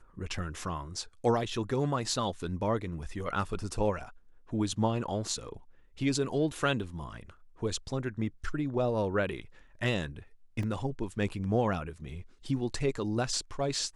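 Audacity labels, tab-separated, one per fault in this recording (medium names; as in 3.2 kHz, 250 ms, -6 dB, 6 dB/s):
10.630000	10.630000	dropout 3.1 ms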